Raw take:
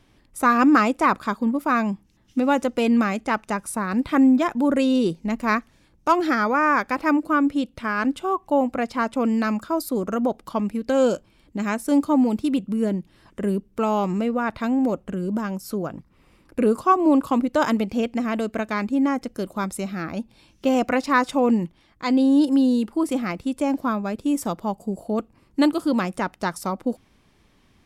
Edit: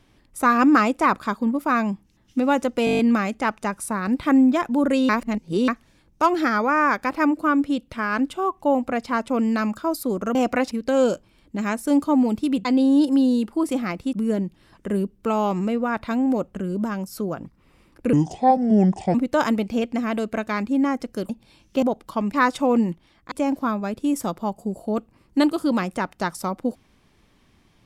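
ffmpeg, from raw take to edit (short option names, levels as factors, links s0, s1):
-filter_complex "[0:a]asplit=20[s0][s1][s2][s3][s4][s5][s6][s7][s8][s9][s10][s11][s12][s13][s14][s15][s16][s17][s18][s19];[s0]atrim=end=2.872[s20];[s1]atrim=start=2.848:end=2.872[s21];[s2]atrim=start=2.848:end=2.872[s22];[s3]atrim=start=2.848:end=2.872[s23];[s4]atrim=start=2.848:end=2.872[s24];[s5]atrim=start=2.848:end=2.872[s25];[s6]atrim=start=2.848:end=2.872[s26];[s7]atrim=start=2.848:end=4.952[s27];[s8]atrim=start=4.948:end=5.542,asetpts=PTS-STARTPTS,areverse[s28];[s9]atrim=start=5.538:end=10.212[s29];[s10]atrim=start=20.708:end=21.072[s30];[s11]atrim=start=10.718:end=12.662[s31];[s12]atrim=start=22.048:end=23.532[s32];[s13]atrim=start=12.658:end=16.664[s33];[s14]atrim=start=16.66:end=17.36,asetpts=PTS-STARTPTS,asetrate=30429,aresample=44100,atrim=end_sample=44739,asetpts=PTS-STARTPTS[s34];[s15]atrim=start=17.356:end=19.512[s35];[s16]atrim=start=20.178:end=20.712[s36];[s17]atrim=start=10.208:end=10.722[s37];[s18]atrim=start=21.068:end=22.052[s38];[s19]atrim=start=23.528[s39];[s20][s21]acrossfade=d=0.004:c1=hsin:c2=hsin[s40];[s40][s22]acrossfade=d=0.004:c1=hsin:c2=hsin[s41];[s41][s23]acrossfade=d=0.004:c1=hsin:c2=hsin[s42];[s42][s24]acrossfade=d=0.004:c1=hsin:c2=hsin[s43];[s43][s25]acrossfade=d=0.004:c1=hsin:c2=hsin[s44];[s44][s26]acrossfade=d=0.004:c1=hsin:c2=hsin[s45];[s45][s27]acrossfade=d=0.004:c1=hsin:c2=hsin[s46];[s46][s28]acrossfade=d=0.004:c1=hsin:c2=hsin[s47];[s47][s29]acrossfade=d=0.004:c1=hsin:c2=hsin[s48];[s48][s30]acrossfade=d=0.004:c1=hsin:c2=hsin[s49];[s49][s31]acrossfade=d=0.004:c1=hsin:c2=hsin[s50];[s50][s32]acrossfade=d=0.004:c1=hsin:c2=hsin[s51];[s51][s33]acrossfade=d=0.004:c1=hsin:c2=hsin[s52];[s52][s34]acrossfade=d=0.004:c1=hsin:c2=hsin[s53];[s53][s35]acrossfade=d=0.004:c1=hsin:c2=hsin[s54];[s54][s36]acrossfade=d=0.004:c1=hsin:c2=hsin[s55];[s55][s37]acrossfade=d=0.004:c1=hsin:c2=hsin[s56];[s56][s38]acrossfade=d=0.004:c1=hsin:c2=hsin[s57];[s57][s39]acrossfade=d=0.004:c1=hsin:c2=hsin"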